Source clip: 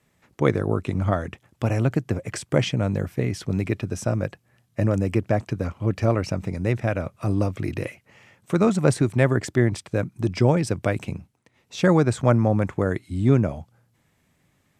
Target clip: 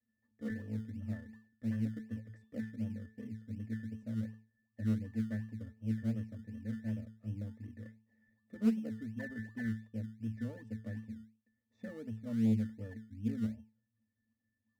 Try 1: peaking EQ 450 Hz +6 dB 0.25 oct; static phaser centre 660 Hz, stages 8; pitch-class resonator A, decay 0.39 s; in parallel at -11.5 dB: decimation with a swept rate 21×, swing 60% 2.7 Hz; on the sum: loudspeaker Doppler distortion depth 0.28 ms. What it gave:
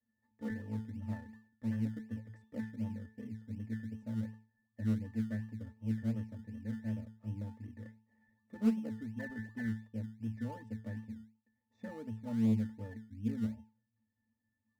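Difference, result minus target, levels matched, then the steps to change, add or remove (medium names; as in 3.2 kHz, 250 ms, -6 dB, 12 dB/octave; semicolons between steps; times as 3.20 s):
1 kHz band +7.5 dB
add first: Butterworth band-stop 960 Hz, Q 2.2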